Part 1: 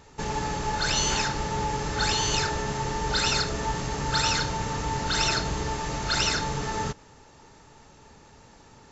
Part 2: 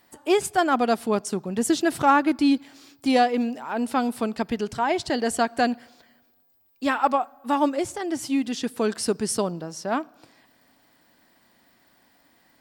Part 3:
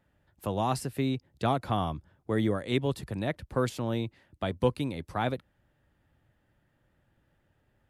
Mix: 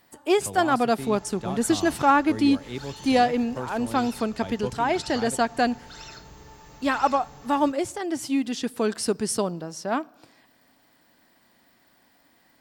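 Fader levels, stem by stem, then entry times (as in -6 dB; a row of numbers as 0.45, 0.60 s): -18.0, -0.5, -6.5 dB; 0.80, 0.00, 0.00 s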